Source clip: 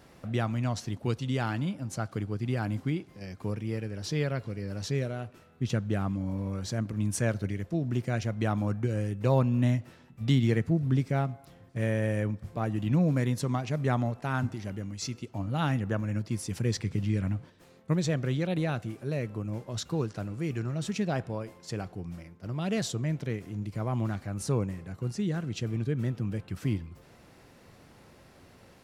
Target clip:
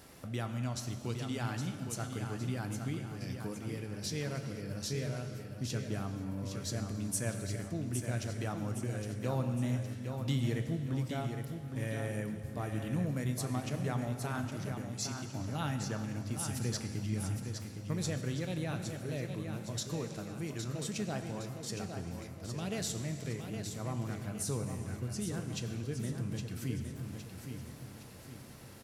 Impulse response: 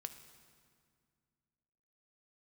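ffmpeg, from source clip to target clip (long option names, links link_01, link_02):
-filter_complex "[0:a]aemphasis=mode=production:type=50kf,acompressor=threshold=-44dB:ratio=1.5,aecho=1:1:813|1626|2439|3252|4065:0.447|0.205|0.0945|0.0435|0.02[link_01];[1:a]atrim=start_sample=2205,afade=type=out:start_time=0.36:duration=0.01,atrim=end_sample=16317,asetrate=26019,aresample=44100[link_02];[link_01][link_02]afir=irnorm=-1:irlink=0"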